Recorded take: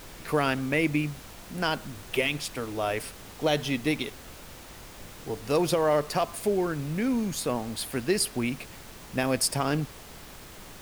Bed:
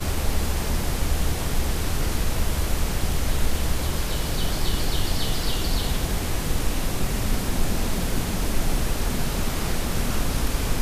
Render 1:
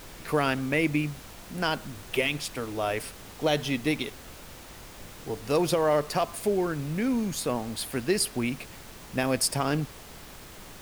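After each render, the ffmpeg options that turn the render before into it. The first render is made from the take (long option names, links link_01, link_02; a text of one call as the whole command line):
ffmpeg -i in.wav -af anull out.wav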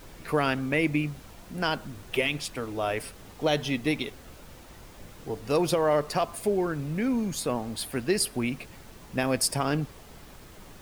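ffmpeg -i in.wav -af "afftdn=noise_reduction=6:noise_floor=-46" out.wav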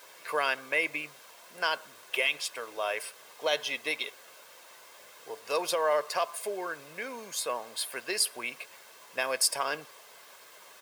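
ffmpeg -i in.wav -af "highpass=720,aecho=1:1:1.9:0.4" out.wav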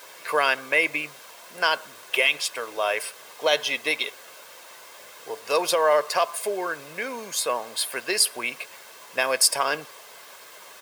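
ffmpeg -i in.wav -af "volume=7dB" out.wav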